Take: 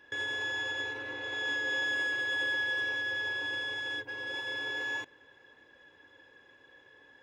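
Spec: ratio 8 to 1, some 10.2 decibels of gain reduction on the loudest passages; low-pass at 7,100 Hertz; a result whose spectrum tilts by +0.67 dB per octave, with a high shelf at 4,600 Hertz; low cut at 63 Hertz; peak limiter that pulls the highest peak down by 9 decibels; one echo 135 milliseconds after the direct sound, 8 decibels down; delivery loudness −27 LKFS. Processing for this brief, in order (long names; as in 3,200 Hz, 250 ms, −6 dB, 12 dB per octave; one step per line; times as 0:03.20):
high-pass filter 63 Hz
low-pass filter 7,100 Hz
high-shelf EQ 4,600 Hz −7.5 dB
downward compressor 8 to 1, threshold −41 dBFS
brickwall limiter −39.5 dBFS
single-tap delay 135 ms −8 dB
level +16.5 dB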